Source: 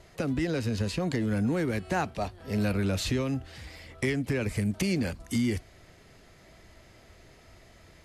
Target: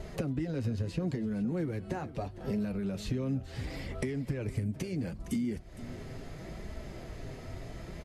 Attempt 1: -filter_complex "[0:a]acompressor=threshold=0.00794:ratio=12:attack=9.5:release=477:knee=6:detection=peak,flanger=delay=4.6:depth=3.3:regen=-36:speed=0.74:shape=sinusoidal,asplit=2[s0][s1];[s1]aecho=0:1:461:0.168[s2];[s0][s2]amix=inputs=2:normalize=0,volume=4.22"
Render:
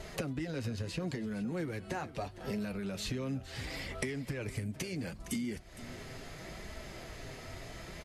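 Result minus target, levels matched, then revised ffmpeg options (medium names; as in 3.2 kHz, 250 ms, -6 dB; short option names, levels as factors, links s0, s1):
1 kHz band +4.0 dB
-filter_complex "[0:a]acompressor=threshold=0.00794:ratio=12:attack=9.5:release=477:knee=6:detection=peak,tiltshelf=f=730:g=5.5,flanger=delay=4.6:depth=3.3:regen=-36:speed=0.74:shape=sinusoidal,asplit=2[s0][s1];[s1]aecho=0:1:461:0.168[s2];[s0][s2]amix=inputs=2:normalize=0,volume=4.22"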